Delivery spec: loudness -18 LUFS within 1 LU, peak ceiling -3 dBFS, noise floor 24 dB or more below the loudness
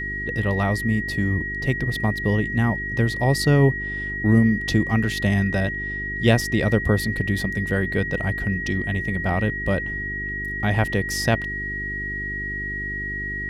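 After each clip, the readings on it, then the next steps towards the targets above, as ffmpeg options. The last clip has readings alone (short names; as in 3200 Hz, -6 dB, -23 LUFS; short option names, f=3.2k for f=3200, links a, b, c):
hum 50 Hz; harmonics up to 400 Hz; hum level -31 dBFS; steady tone 1900 Hz; tone level -27 dBFS; loudness -22.5 LUFS; peak -5.0 dBFS; loudness target -18.0 LUFS
-> -af "bandreject=f=50:t=h:w=4,bandreject=f=100:t=h:w=4,bandreject=f=150:t=h:w=4,bandreject=f=200:t=h:w=4,bandreject=f=250:t=h:w=4,bandreject=f=300:t=h:w=4,bandreject=f=350:t=h:w=4,bandreject=f=400:t=h:w=4"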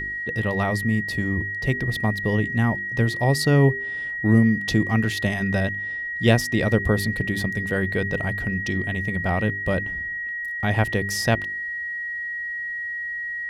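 hum none; steady tone 1900 Hz; tone level -27 dBFS
-> -af "bandreject=f=1.9k:w=30"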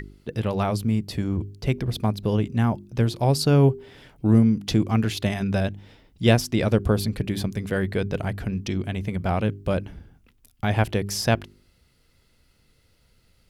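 steady tone none; loudness -24.0 LUFS; peak -6.0 dBFS; loudness target -18.0 LUFS
-> -af "volume=6dB,alimiter=limit=-3dB:level=0:latency=1"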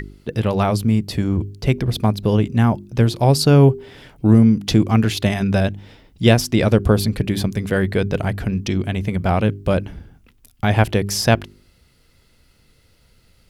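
loudness -18.0 LUFS; peak -3.0 dBFS; noise floor -56 dBFS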